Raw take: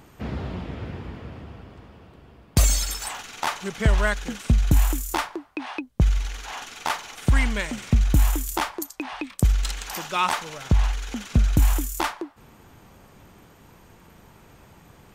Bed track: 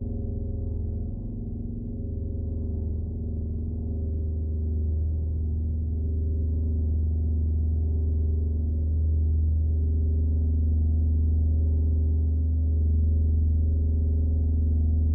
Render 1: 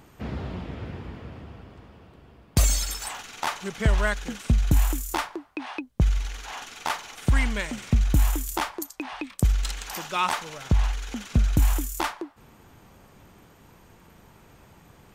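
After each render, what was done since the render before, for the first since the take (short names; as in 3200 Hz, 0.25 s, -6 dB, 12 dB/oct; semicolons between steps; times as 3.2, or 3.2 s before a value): gain -2 dB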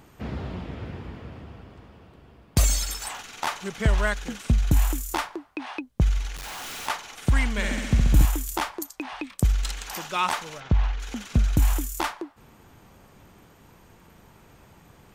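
6.36–6.88 infinite clipping; 7.51–8.25 flutter echo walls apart 11.4 m, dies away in 1.3 s; 10.6–11 air absorption 180 m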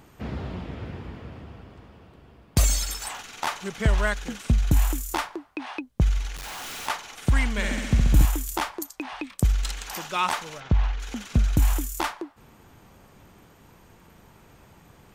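nothing audible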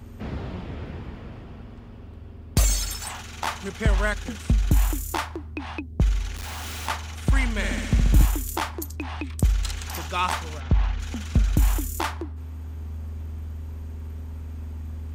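add bed track -11.5 dB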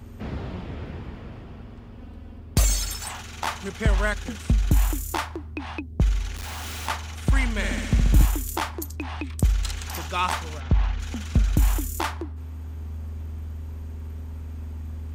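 1.98–2.4 comb 4 ms, depth 68%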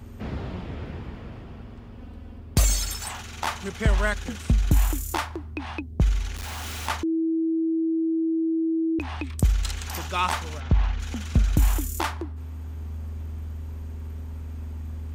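7.03–8.99 bleep 325 Hz -21 dBFS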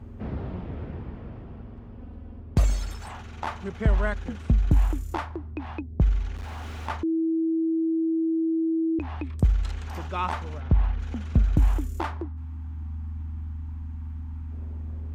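12.28–14.52 spectral gain 340–730 Hz -22 dB; LPF 1000 Hz 6 dB/oct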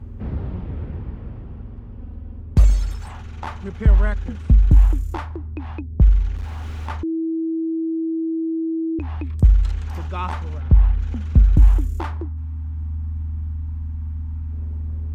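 low shelf 130 Hz +10 dB; notch 670 Hz, Q 12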